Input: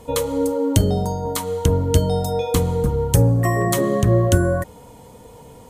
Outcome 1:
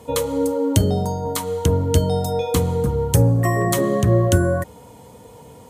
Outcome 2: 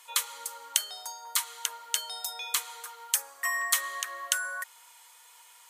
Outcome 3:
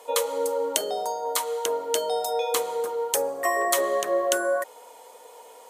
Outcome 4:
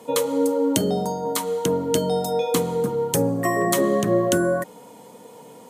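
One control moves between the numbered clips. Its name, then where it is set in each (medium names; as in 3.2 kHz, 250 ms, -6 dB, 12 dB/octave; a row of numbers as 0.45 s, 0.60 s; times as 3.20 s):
high-pass, cutoff frequency: 61 Hz, 1.3 kHz, 500 Hz, 180 Hz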